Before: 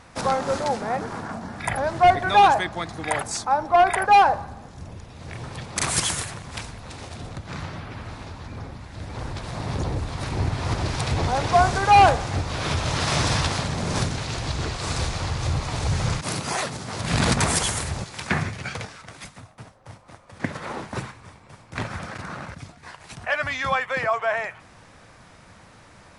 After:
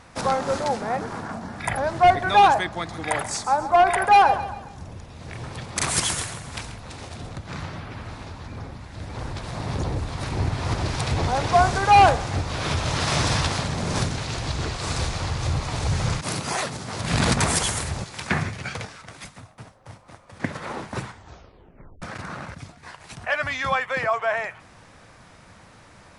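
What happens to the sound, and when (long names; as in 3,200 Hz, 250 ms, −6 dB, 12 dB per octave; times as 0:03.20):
0:02.78–0:06.76: repeating echo 135 ms, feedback 43%, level −13 dB
0:21.03: tape stop 0.99 s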